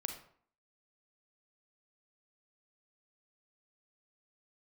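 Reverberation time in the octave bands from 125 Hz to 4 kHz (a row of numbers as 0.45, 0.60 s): 0.50, 0.60, 0.55, 0.55, 0.45, 0.35 s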